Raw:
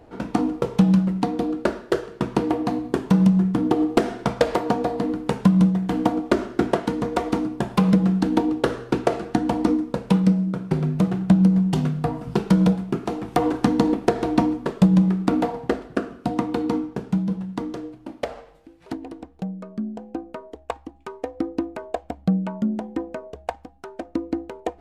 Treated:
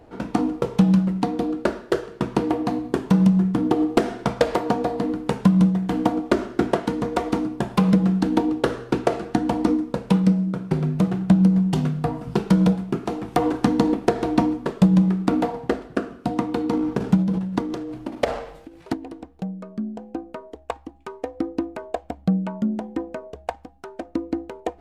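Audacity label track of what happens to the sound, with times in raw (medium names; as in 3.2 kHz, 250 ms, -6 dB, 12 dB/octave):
16.730000	18.940000	transient shaper attack +6 dB, sustain +11 dB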